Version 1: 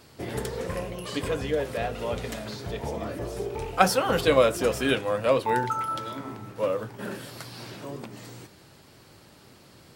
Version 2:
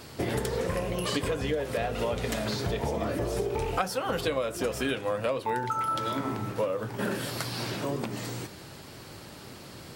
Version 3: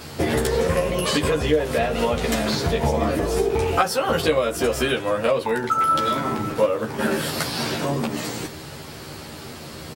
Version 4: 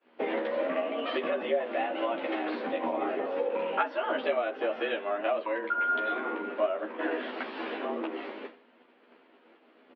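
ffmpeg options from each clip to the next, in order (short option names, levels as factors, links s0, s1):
-af "acompressor=threshold=0.0224:ratio=12,volume=2.37"
-filter_complex "[0:a]asplit=2[s0][s1];[s1]adelay=13,volume=0.794[s2];[s0][s2]amix=inputs=2:normalize=0,volume=2.11"
-af "highpass=f=150:t=q:w=0.5412,highpass=f=150:t=q:w=1.307,lowpass=f=3000:t=q:w=0.5176,lowpass=f=3000:t=q:w=0.7071,lowpass=f=3000:t=q:w=1.932,afreqshift=96,agate=range=0.0224:threshold=0.0355:ratio=3:detection=peak,volume=0.376"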